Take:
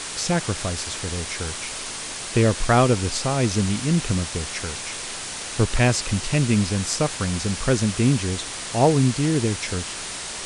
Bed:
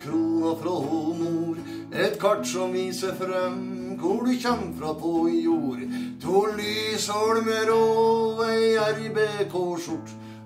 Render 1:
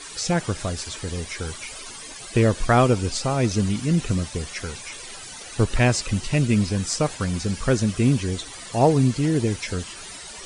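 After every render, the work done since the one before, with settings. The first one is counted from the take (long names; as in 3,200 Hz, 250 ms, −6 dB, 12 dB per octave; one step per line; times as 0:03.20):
broadband denoise 14 dB, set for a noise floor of −33 dBFS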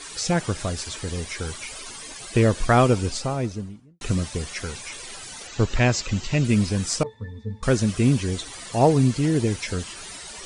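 0:02.95–0:04.01: fade out and dull
0:05.47–0:06.45: elliptic low-pass filter 7,400 Hz
0:07.03–0:07.63: resonances in every octave A, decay 0.14 s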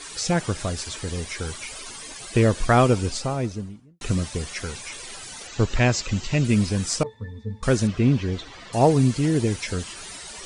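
0:07.87–0:08.73: Gaussian smoothing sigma 1.8 samples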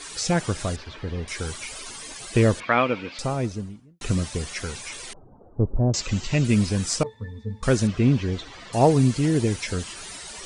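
0:00.76–0:01.28: high-frequency loss of the air 300 metres
0:02.60–0:03.19: loudspeaker in its box 290–3,500 Hz, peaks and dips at 390 Hz −9 dB, 730 Hz −6 dB, 2,300 Hz +8 dB
0:05.13–0:05.94: Gaussian smoothing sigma 12 samples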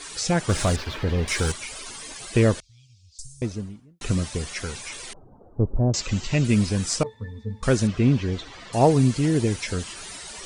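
0:00.49–0:01.52: leveller curve on the samples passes 2
0:02.60–0:03.42: inverse Chebyshev band-stop filter 300–1,700 Hz, stop band 70 dB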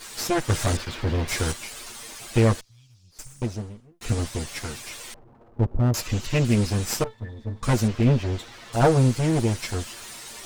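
lower of the sound and its delayed copy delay 8.6 ms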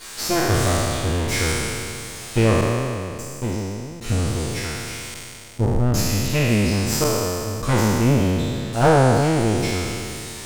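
peak hold with a decay on every bin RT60 2.53 s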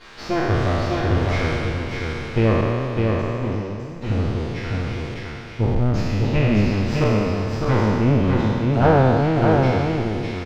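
high-frequency loss of the air 260 metres
single-tap delay 606 ms −3.5 dB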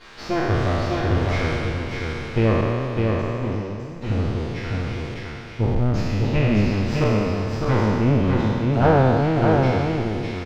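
level −1 dB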